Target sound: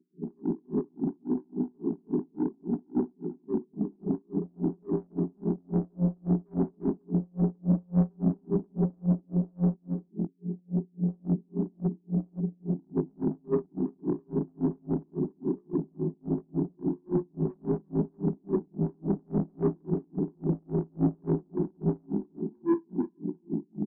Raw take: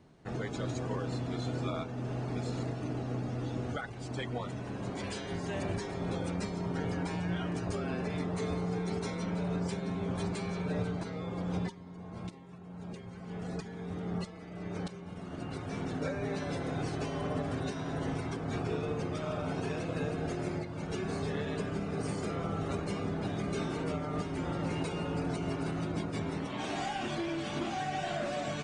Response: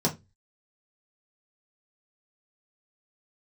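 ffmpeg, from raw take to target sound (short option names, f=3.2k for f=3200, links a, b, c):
-filter_complex "[0:a]apsyclip=31dB,bandreject=f=226.7:t=h:w=4,bandreject=f=453.4:t=h:w=4,bandreject=f=680.1:t=h:w=4,bandreject=f=906.8:t=h:w=4,bandreject=f=1.1335k:t=h:w=4,bandreject=f=1.3602k:t=h:w=4,bandreject=f=1.5869k:t=h:w=4,bandreject=f=1.8136k:t=h:w=4,bandreject=f=2.0403k:t=h:w=4,bandreject=f=2.267k:t=h:w=4,bandreject=f=2.4937k:t=h:w=4,bandreject=f=2.7204k:t=h:w=4,dynaudnorm=f=270:g=5:m=7dB,flanger=delay=16:depth=3.4:speed=0.54,afftfilt=real='re*between(b*sr/4096,160,430)':imag='im*between(b*sr/4096,160,430)':win_size=4096:overlap=0.75,asoftclip=type=tanh:threshold=-10dB,atempo=1.2,asplit=2[a][b];[b]aecho=0:1:345:0.266[c];[a][c]amix=inputs=2:normalize=0,aeval=exprs='val(0)*pow(10,-40*(0.5-0.5*cos(2*PI*3.6*n/s))/20)':c=same,volume=-7.5dB"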